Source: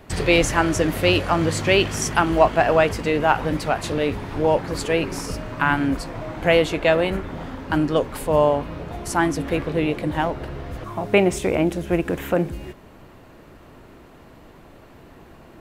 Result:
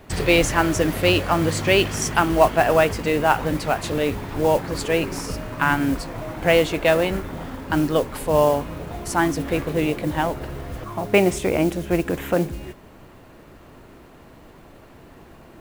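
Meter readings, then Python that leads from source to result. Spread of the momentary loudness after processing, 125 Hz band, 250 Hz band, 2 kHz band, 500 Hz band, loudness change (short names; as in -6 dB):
12 LU, 0.0 dB, 0.0 dB, 0.0 dB, 0.0 dB, 0.0 dB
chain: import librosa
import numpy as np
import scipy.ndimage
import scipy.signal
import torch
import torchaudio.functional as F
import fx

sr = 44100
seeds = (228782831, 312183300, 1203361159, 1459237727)

y = fx.mod_noise(x, sr, seeds[0], snr_db=22)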